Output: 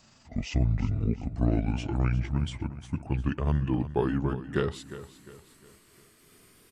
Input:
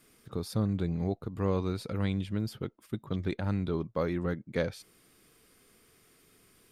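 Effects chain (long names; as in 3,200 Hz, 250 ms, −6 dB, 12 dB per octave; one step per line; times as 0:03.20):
pitch glide at a constant tempo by −11 semitones ending unshifted
repeating echo 354 ms, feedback 40%, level −14 dB
level +5 dB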